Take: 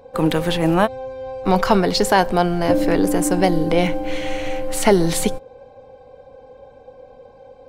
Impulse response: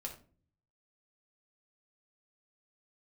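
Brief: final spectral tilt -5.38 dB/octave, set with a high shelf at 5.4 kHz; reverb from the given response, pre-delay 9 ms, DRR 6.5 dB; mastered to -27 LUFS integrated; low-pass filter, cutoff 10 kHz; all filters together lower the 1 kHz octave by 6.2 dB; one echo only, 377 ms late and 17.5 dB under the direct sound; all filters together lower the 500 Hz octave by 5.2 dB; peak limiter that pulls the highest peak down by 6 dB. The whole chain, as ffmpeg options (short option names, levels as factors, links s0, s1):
-filter_complex "[0:a]lowpass=10000,equalizer=f=500:t=o:g=-5,equalizer=f=1000:t=o:g=-6,highshelf=f=5400:g=-8.5,alimiter=limit=0.251:level=0:latency=1,aecho=1:1:377:0.133,asplit=2[s0][s1];[1:a]atrim=start_sample=2205,adelay=9[s2];[s1][s2]afir=irnorm=-1:irlink=0,volume=0.596[s3];[s0][s3]amix=inputs=2:normalize=0,volume=0.668"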